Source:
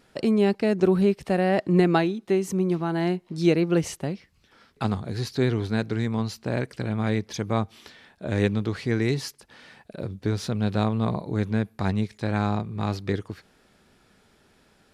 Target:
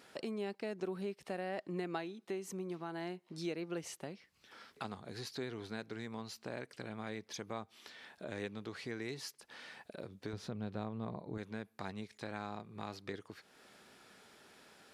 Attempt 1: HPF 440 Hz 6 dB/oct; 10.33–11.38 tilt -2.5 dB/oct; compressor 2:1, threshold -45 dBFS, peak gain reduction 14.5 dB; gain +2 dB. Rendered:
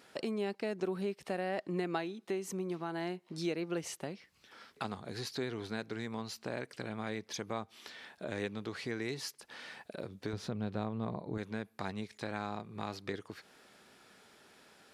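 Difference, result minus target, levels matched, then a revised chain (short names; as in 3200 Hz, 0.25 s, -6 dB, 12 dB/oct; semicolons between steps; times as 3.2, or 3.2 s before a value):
compressor: peak gain reduction -4 dB
HPF 440 Hz 6 dB/oct; 10.33–11.38 tilt -2.5 dB/oct; compressor 2:1, threshold -53.5 dBFS, peak gain reduction 19 dB; gain +2 dB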